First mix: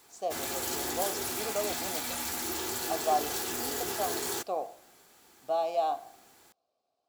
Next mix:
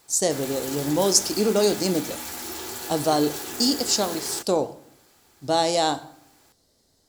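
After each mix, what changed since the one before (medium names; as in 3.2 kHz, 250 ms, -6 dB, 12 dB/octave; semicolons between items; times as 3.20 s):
speech: remove vowel filter a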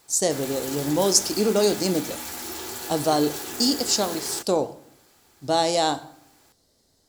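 no change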